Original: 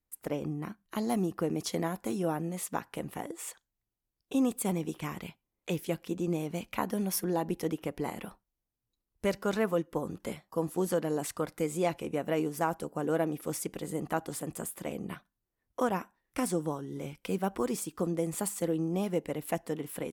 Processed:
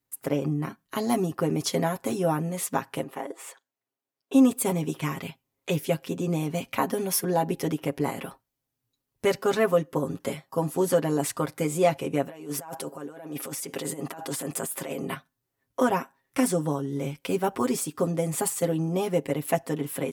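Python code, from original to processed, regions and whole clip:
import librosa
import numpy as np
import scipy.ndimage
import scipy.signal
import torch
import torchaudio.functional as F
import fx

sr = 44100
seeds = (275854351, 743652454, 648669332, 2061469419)

y = fx.chain(x, sr, fx.highpass(hz=330.0, slope=12),
    fx.high_shelf(hz=3000.0, db=-10.0), at=(3.03, 4.33))
y = fx.chain(y, sr, fx.highpass(hz=320.0, slope=6),
    fx.over_compress(threshold_db=-42.0, ratio=-1.0), at=(12.27, 15.14))
y = scipy.signal.sosfilt(scipy.signal.butter(2, 74.0, 'highpass', fs=sr, output='sos'), y)
y = y + 0.75 * np.pad(y, (int(7.4 * sr / 1000.0), 0))[:len(y)]
y = y * librosa.db_to_amplitude(5.0)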